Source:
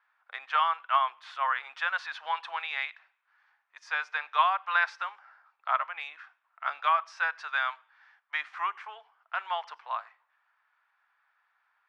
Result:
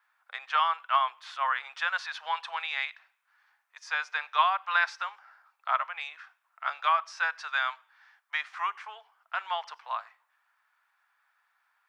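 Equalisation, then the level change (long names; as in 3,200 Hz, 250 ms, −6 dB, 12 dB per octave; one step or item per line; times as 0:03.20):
bass and treble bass −15 dB, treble +8 dB
0.0 dB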